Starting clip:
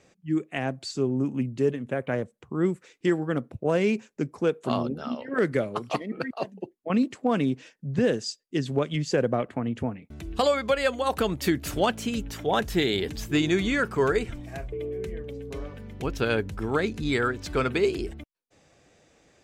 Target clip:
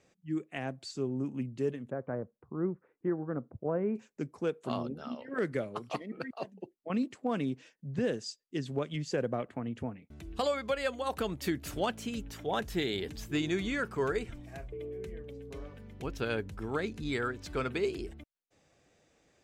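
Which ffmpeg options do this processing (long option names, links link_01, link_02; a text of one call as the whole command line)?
ffmpeg -i in.wav -filter_complex "[0:a]asplit=3[link_01][link_02][link_03];[link_01]afade=type=out:start_time=1.89:duration=0.02[link_04];[link_02]lowpass=frequency=1400:width=0.5412,lowpass=frequency=1400:width=1.3066,afade=type=in:start_time=1.89:duration=0.02,afade=type=out:start_time=3.95:duration=0.02[link_05];[link_03]afade=type=in:start_time=3.95:duration=0.02[link_06];[link_04][link_05][link_06]amix=inputs=3:normalize=0,volume=-8dB" out.wav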